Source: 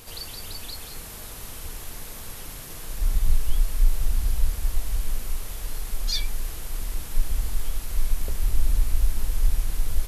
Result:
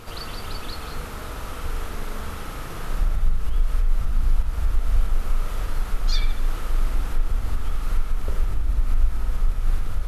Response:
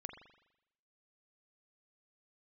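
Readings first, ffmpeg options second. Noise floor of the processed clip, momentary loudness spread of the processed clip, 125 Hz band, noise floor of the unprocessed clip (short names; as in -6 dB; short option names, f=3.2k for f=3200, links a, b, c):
-34 dBFS, 8 LU, +2.5 dB, -39 dBFS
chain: -filter_complex "[0:a]lowpass=f=1.9k:p=1,equalizer=f=1.3k:w=5:g=9,asplit=2[a][b];[b]acompressor=threshold=-27dB:ratio=6,volume=0.5dB[c];[a][c]amix=inputs=2:normalize=0,alimiter=limit=-13.5dB:level=0:latency=1:release=100[d];[1:a]atrim=start_sample=2205[e];[d][e]afir=irnorm=-1:irlink=0,volume=6dB"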